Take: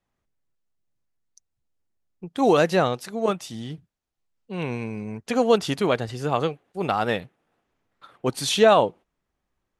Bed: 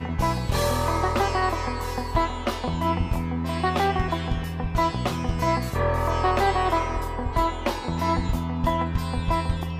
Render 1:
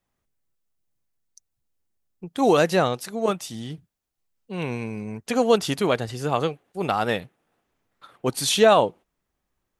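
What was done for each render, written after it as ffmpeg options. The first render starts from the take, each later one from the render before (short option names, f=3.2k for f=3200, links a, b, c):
-af "highshelf=f=7.9k:g=8.5"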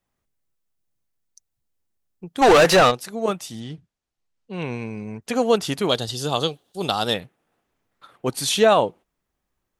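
-filter_complex "[0:a]asplit=3[a][b][c];[a]afade=t=out:st=2.41:d=0.02[d];[b]asplit=2[e][f];[f]highpass=f=720:p=1,volume=26dB,asoftclip=type=tanh:threshold=-6dB[g];[e][g]amix=inputs=2:normalize=0,lowpass=f=4.5k:p=1,volume=-6dB,afade=t=in:st=2.41:d=0.02,afade=t=out:st=2.9:d=0.02[h];[c]afade=t=in:st=2.9:d=0.02[i];[d][h][i]amix=inputs=3:normalize=0,asettb=1/sr,asplit=3[j][k][l];[j]atrim=end=3.604[m];[k]atrim=start=3.6:end=5.22,asetpts=PTS-STARTPTS,afade=t=in:d=0.004:c=qsin,afade=t=out:st=1.616:d=0.004:c=qsin,lowpass=6.9k[n];[l]atrim=start=5.216[o];[m][n]acrossfade=d=0.004:c1=hsin:c2=qsin[p];[p][o]acrossfade=d=0.004:c1=qsin:c2=hsin,asettb=1/sr,asplit=3[q][r][s];[q]atrim=end=5.894[t];[r]atrim=start=5.89:end=7.14,asetpts=PTS-STARTPTS,afade=t=in:d=0.004:c=qsin,afade=t=out:st=1.246:d=0.004:c=qsin,highshelf=f=2.8k:t=q:w=3:g=7.5[u];[s]atrim=start=7.136[v];[t][u]acrossfade=d=0.004:c1=hsin:c2=qsin[w];[w][v]acrossfade=d=0.004:c1=qsin:c2=hsin"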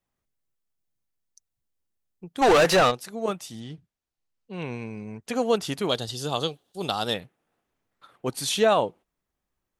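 -af "volume=-4.5dB"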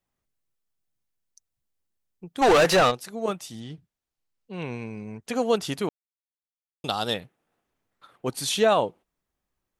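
-filter_complex "[0:a]asplit=3[a][b][c];[a]atrim=end=5.89,asetpts=PTS-STARTPTS,afade=t=out:st=5.886:d=0.004:c=hsin[d];[b]atrim=start=5.89:end=6.84,asetpts=PTS-STARTPTS,volume=0[e];[c]atrim=start=6.84,asetpts=PTS-STARTPTS,afade=t=in:d=0.004:c=hsin[f];[d][e][f]concat=n=3:v=0:a=1"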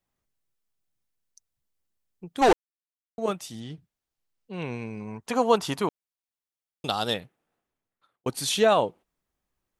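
-filter_complex "[0:a]asettb=1/sr,asplit=3[a][b][c];[a]atrim=end=5.004[d];[b]atrim=start=5:end=5.88,asetpts=PTS-STARTPTS,afade=t=in:d=0.004:c=qsin,afade=t=out:st=0.876:d=0.004:c=qsin,equalizer=f=990:w=2.2:g=10.5[e];[c]atrim=start=5.876[f];[d][e]acrossfade=d=0.004:c1=hsin:c2=qsin[g];[g][f]acrossfade=d=0.004:c1=qsin:c2=hsin,asplit=4[h][i][j][k];[h]atrim=end=2.53,asetpts=PTS-STARTPTS,afade=t=out:st=2.526:d=0.004:c=hsin[l];[i]atrim=start=2.53:end=3.18,asetpts=PTS-STARTPTS,volume=0[m];[j]atrim=start=3.18:end=8.26,asetpts=PTS-STARTPTS,afade=t=in:d=0.004:c=hsin,afade=t=out:st=3.92:d=1.16[n];[k]atrim=start=8.26,asetpts=PTS-STARTPTS,afade=t=in:d=0.004:c=hsin[o];[l][m][n][o]concat=n=4:v=0:a=1"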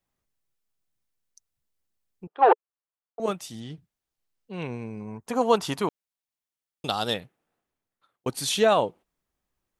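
-filter_complex "[0:a]asettb=1/sr,asplit=3[a][b][c];[a]atrim=end=2.274[d];[b]atrim=start=2.27:end=3.2,asetpts=PTS-STARTPTS,afade=t=in:d=0.004:c=qsin,afade=t=out:st=0.926:d=0.004:c=qsin,highpass=f=420:w=0.5412,highpass=f=420:w=1.3066,equalizer=f=440:t=q:w=4:g=4,equalizer=f=860:t=q:w=4:g=5,equalizer=f=1.2k:t=q:w=4:g=4,equalizer=f=2.1k:t=q:w=4:g=-9,lowpass=f=2.4k:w=0.5412,lowpass=f=2.4k:w=1.3066[e];[c]atrim=start=3.196[f];[d][e]acrossfade=d=0.004:c1=hsin:c2=qsin[g];[g][f]acrossfade=d=0.004:c1=qsin:c2=hsin,asettb=1/sr,asplit=3[h][i][j];[h]atrim=end=4.674[k];[i]atrim=start=4.67:end=5.41,asetpts=PTS-STARTPTS,afade=t=in:d=0.004:c=qsin,afade=t=out:st=0.736:d=0.004:c=qsin,equalizer=f=3.2k:t=o:w=2.1:g=-7.5[l];[j]atrim=start=5.406[m];[k][l]acrossfade=d=0.004:c1=hsin:c2=qsin[n];[n][m]acrossfade=d=0.004:c1=qsin:c2=hsin"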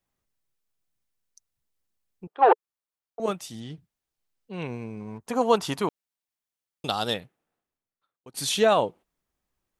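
-filter_complex "[0:a]asettb=1/sr,asplit=3[a][b][c];[a]atrim=end=4.674[d];[b]atrim=start=4.67:end=5.2,asetpts=PTS-STARTPTS,afade=t=in:d=0.004:c=qsin,afade=t=out:st=0.526:d=0.004:c=qsin,aeval=exprs='sgn(val(0))*max(abs(val(0))-0.00112,0)':c=same[e];[c]atrim=start=5.196[f];[d][e]acrossfade=d=0.004:c1=hsin:c2=qsin[g];[g][f]acrossfade=d=0.004:c1=qsin:c2=hsin,asplit=2[h][i];[h]atrim=end=8.34,asetpts=PTS-STARTPTS,afade=t=out:st=7.07:d=1.27:silence=0.0707946[j];[i]atrim=start=8.34,asetpts=PTS-STARTPTS,afade=t=in:d=0.004:c=hsin:silence=0.0707946[k];[j][k]concat=n=2:v=0:a=1"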